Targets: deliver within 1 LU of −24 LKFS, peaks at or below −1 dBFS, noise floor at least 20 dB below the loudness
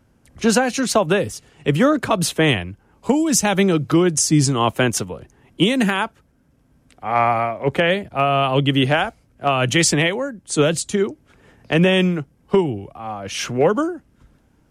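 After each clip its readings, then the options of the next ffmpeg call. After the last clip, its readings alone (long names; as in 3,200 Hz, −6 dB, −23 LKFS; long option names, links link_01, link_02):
integrated loudness −19.0 LKFS; sample peak −5.5 dBFS; target loudness −24.0 LKFS
→ -af "volume=-5dB"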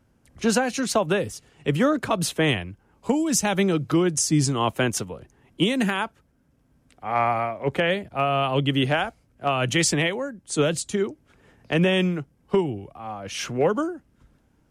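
integrated loudness −24.0 LKFS; sample peak −10.5 dBFS; background noise floor −64 dBFS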